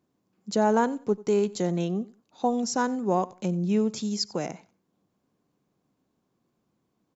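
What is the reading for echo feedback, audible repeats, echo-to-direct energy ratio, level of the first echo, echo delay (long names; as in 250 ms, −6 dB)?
22%, 2, −21.5 dB, −21.5 dB, 92 ms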